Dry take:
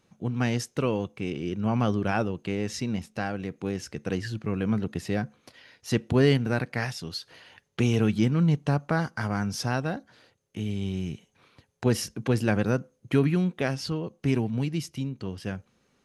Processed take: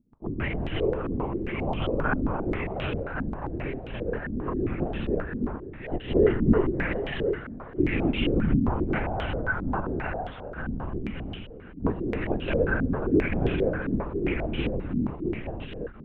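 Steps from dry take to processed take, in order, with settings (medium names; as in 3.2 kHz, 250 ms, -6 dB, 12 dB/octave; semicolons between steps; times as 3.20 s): vibrato 0.72 Hz 83 cents; on a send: thinning echo 719 ms, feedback 25%, high-pass 420 Hz, level -5 dB; on the sum: gated-style reverb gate 370 ms rising, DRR -0.5 dB; LPC vocoder at 8 kHz whisper; step-sequenced low-pass 7.5 Hz 250–3100 Hz; trim -5.5 dB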